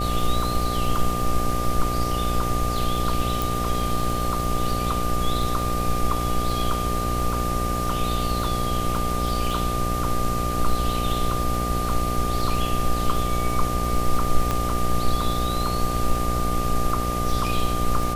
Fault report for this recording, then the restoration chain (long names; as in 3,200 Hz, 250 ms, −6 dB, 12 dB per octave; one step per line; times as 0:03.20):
mains buzz 60 Hz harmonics 13 −27 dBFS
surface crackle 51 per second −29 dBFS
whistle 1,200 Hz −27 dBFS
0:03.42: click
0:14.51: click −10 dBFS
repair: click removal
notch filter 1,200 Hz, Q 30
hum removal 60 Hz, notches 13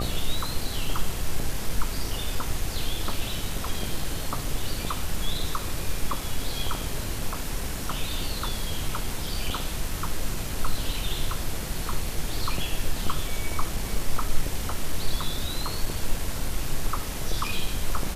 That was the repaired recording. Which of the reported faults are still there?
0:14.51: click